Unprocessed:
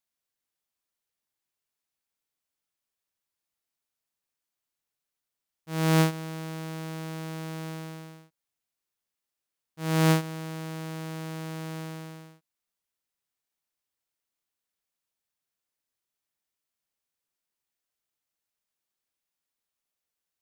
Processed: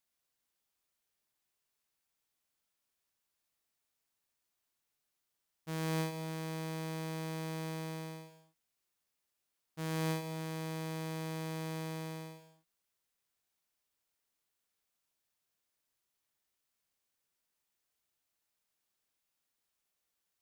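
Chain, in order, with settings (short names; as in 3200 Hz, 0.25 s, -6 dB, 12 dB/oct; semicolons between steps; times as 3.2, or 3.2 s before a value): compressor 2.5:1, threshold -41 dBFS, peak gain reduction 15 dB; non-linear reverb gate 0.26 s flat, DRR 7 dB; gain +1.5 dB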